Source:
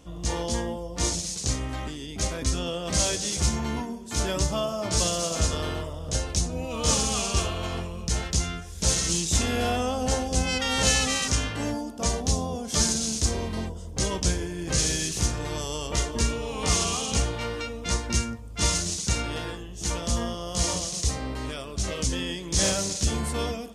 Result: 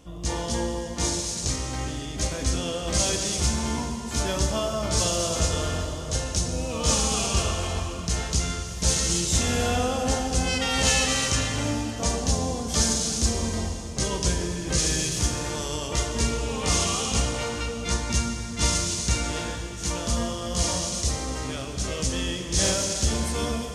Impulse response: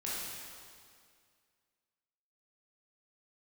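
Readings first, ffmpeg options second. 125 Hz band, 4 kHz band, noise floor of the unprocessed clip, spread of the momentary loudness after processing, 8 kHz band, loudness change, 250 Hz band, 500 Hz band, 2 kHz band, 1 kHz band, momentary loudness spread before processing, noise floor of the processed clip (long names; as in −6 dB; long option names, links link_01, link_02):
+1.5 dB, +1.5 dB, −38 dBFS, 7 LU, +1.0 dB, +1.5 dB, +1.5 dB, +1.5 dB, +1.5 dB, +1.5 dB, 9 LU, −34 dBFS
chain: -filter_complex "[0:a]asplit=2[link_01][link_02];[1:a]atrim=start_sample=2205,asetrate=29988,aresample=44100,adelay=44[link_03];[link_02][link_03]afir=irnorm=-1:irlink=0,volume=-11dB[link_04];[link_01][link_04]amix=inputs=2:normalize=0"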